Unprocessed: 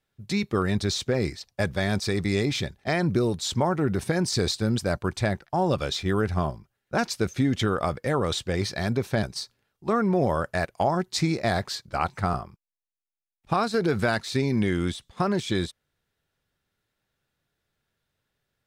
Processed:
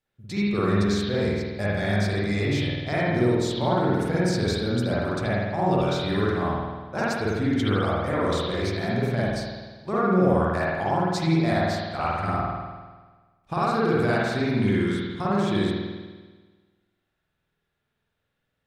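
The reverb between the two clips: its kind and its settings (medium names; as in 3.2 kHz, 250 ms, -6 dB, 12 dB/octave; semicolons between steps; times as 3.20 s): spring tank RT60 1.4 s, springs 49 ms, chirp 35 ms, DRR -7.5 dB; trim -6.5 dB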